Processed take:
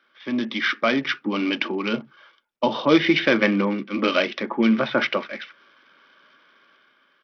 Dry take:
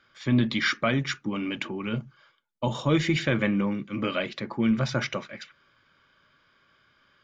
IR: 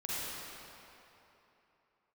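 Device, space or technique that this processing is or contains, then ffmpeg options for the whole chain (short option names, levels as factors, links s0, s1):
Bluetooth headset: -af "highpass=f=230:w=0.5412,highpass=f=230:w=1.3066,dynaudnorm=f=350:g=5:m=2.66,aresample=8000,aresample=44100" -ar 44100 -c:a sbc -b:a 64k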